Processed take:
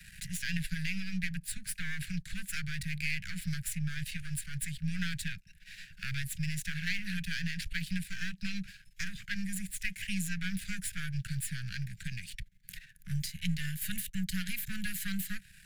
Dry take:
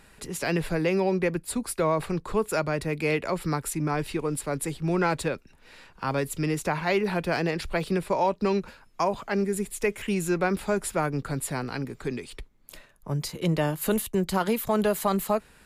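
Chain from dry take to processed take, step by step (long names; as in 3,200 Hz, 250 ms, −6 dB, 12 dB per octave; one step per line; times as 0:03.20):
gain on one half-wave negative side −12 dB
Chebyshev band-stop filter 190–1,600 Hz, order 5
multiband upward and downward compressor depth 40%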